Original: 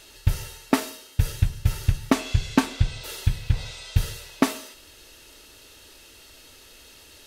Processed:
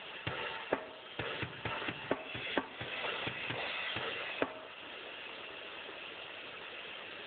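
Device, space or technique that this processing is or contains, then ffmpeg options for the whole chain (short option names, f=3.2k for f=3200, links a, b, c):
voicemail: -filter_complex "[0:a]asettb=1/sr,asplit=3[a][b][c];[a]atrim=end=2.544[d];[b]atrim=start=2.54:end=4.1,asetpts=PTS-STARTPTS,afade=t=in:d=0.004:c=qsin,afade=t=out:st=1.556:d=0.004:c=qsin,highpass=92[e];[c]atrim=start=4.096[f];[d][e]acrossfade=d=0.004:c1=hsin:c2=qsin[g];[g][f]acrossfade=d=0.004:c1=qsin:c2=hsin,highpass=430,lowpass=2.9k,acompressor=threshold=-43dB:ratio=8,volume=12dB" -ar 8000 -c:a libopencore_amrnb -b:a 7950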